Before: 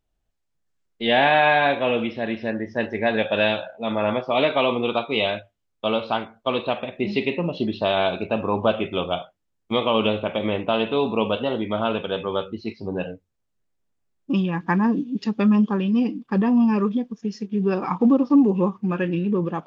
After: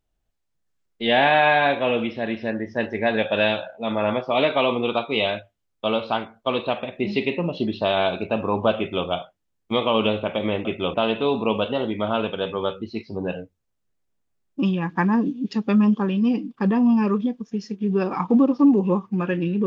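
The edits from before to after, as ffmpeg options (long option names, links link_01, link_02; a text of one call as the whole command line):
ffmpeg -i in.wav -filter_complex "[0:a]asplit=3[link_01][link_02][link_03];[link_01]atrim=end=10.652[link_04];[link_02]atrim=start=8.778:end=9.072[link_05];[link_03]atrim=start=10.648[link_06];[link_04][link_05]acrossfade=duration=0.004:curve1=hsin:curve2=hsin[link_07];[link_07][link_06]acrossfade=duration=0.004:curve1=hsin:curve2=hsin" out.wav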